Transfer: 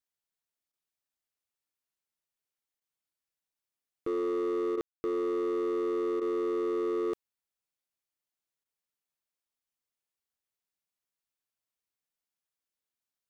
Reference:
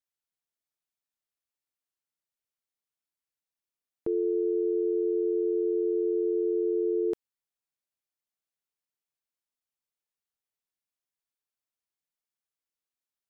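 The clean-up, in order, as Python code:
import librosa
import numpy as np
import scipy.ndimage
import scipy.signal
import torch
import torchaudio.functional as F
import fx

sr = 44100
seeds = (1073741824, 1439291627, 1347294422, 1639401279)

y = fx.fix_declip(x, sr, threshold_db=-27.5)
y = fx.fix_ambience(y, sr, seeds[0], print_start_s=6.19, print_end_s=6.69, start_s=4.81, end_s=5.04)
y = fx.fix_interpolate(y, sr, at_s=(0.72, 2.8, 4.76, 6.2, 8.64), length_ms=13.0)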